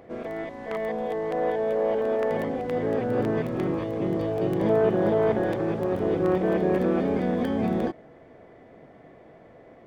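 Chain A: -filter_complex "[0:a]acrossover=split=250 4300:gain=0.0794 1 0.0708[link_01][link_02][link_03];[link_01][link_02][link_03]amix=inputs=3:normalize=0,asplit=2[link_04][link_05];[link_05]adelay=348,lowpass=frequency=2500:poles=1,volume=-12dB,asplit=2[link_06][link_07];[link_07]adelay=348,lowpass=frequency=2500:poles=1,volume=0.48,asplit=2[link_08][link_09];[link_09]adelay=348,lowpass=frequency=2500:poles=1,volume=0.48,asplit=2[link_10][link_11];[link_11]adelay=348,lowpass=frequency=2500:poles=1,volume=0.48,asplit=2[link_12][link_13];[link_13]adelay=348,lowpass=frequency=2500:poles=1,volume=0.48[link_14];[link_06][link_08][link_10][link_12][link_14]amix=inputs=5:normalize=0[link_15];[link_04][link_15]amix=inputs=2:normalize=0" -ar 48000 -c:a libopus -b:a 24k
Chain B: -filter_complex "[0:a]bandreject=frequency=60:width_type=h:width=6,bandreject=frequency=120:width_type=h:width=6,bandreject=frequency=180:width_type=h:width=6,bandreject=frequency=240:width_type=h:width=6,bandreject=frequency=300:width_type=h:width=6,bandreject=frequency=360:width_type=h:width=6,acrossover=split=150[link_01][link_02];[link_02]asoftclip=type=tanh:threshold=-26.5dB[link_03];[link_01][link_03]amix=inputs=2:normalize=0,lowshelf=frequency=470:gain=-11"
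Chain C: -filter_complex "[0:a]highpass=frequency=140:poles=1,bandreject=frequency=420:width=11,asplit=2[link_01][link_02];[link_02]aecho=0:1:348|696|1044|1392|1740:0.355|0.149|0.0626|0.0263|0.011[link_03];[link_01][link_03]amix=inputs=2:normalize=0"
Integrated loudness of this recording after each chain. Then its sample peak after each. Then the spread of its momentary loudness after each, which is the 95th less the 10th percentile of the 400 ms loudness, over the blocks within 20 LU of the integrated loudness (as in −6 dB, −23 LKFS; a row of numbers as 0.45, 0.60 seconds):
−27.0, −36.0, −27.0 LKFS; −11.5, −24.5, −11.5 dBFS; 12, 21, 11 LU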